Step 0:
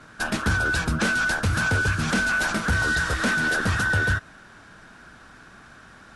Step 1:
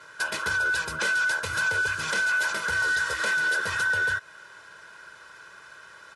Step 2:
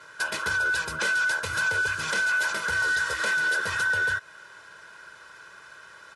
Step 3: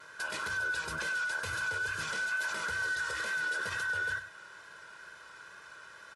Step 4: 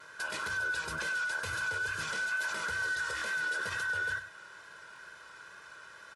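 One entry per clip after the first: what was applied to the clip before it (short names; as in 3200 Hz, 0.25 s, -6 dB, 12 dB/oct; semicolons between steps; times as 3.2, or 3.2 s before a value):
HPF 750 Hz 6 dB/oct; comb 2 ms, depth 75%; compressor 1.5:1, threshold -30 dBFS, peak gain reduction 4.5 dB
nothing audible
limiter -24 dBFS, peak gain reduction 8.5 dB; vibrato 2.2 Hz 25 cents; echo 99 ms -11.5 dB; gain -3.5 dB
stuck buffer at 3.17/4.94, samples 1024, times 1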